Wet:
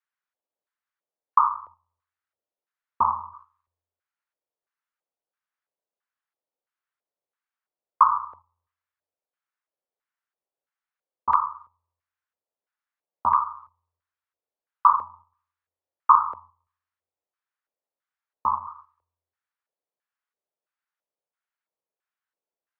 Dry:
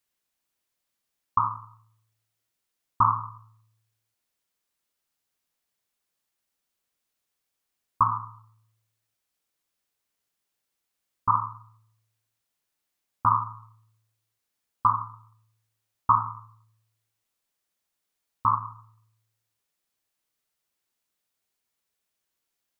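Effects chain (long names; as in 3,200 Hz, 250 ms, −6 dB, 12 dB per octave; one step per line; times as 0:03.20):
noise gate −49 dBFS, range −7 dB
parametric band 930 Hz +3 dB
auto-filter band-pass square 1.5 Hz 550–1,500 Hz
frequency shifter −24 Hz
level +8 dB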